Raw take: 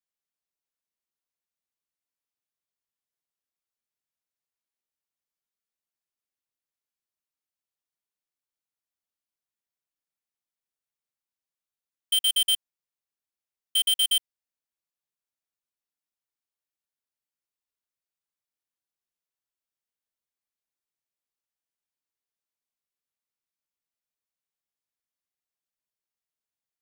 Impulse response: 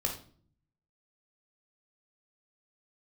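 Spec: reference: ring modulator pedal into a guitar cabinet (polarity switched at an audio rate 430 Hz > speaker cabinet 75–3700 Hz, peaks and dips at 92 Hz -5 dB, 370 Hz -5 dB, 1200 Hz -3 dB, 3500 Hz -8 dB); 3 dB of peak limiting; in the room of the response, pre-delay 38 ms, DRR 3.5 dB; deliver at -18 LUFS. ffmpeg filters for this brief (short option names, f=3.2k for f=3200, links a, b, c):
-filter_complex "[0:a]alimiter=limit=-24dB:level=0:latency=1,asplit=2[a][b];[1:a]atrim=start_sample=2205,adelay=38[c];[b][c]afir=irnorm=-1:irlink=0,volume=-8.5dB[d];[a][d]amix=inputs=2:normalize=0,aeval=exprs='val(0)*sgn(sin(2*PI*430*n/s))':c=same,highpass=75,equalizer=f=92:t=q:w=4:g=-5,equalizer=f=370:t=q:w=4:g=-5,equalizer=f=1.2k:t=q:w=4:g=-3,equalizer=f=3.5k:t=q:w=4:g=-8,lowpass=f=3.7k:w=0.5412,lowpass=f=3.7k:w=1.3066,volume=12dB"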